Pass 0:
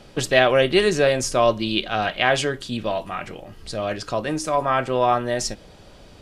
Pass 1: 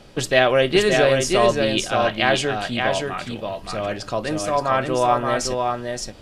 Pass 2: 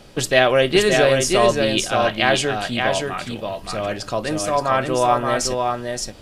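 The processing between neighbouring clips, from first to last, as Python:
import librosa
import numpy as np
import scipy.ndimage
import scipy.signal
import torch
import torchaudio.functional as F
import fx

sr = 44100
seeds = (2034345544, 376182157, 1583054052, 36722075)

y1 = x + 10.0 ** (-4.0 / 20.0) * np.pad(x, (int(573 * sr / 1000.0), 0))[:len(x)]
y2 = fx.high_shelf(y1, sr, hz=8300.0, db=7.0)
y2 = y2 * librosa.db_to_amplitude(1.0)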